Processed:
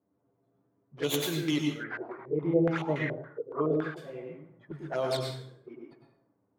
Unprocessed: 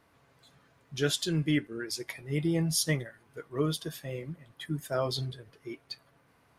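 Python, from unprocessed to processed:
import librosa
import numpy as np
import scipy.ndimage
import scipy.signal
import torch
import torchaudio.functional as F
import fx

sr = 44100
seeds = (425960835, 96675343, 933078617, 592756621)

y = fx.tracing_dist(x, sr, depth_ms=0.41)
y = scipy.signal.sosfilt(scipy.signal.butter(2, 160.0, 'highpass', fs=sr, output='sos'), y)
y = fx.env_lowpass(y, sr, base_hz=330.0, full_db=-26.0)
y = fx.low_shelf(y, sr, hz=420.0, db=-7.5)
y = fx.env_flanger(y, sr, rest_ms=10.3, full_db=-30.0)
y = fx.rev_plate(y, sr, seeds[0], rt60_s=0.64, hf_ratio=0.75, predelay_ms=85, drr_db=1.5)
y = fx.filter_held_lowpass(y, sr, hz=7.1, low_hz=450.0, high_hz=1900.0, at=(1.83, 3.96), fade=0.02)
y = y * librosa.db_to_amplitude(3.5)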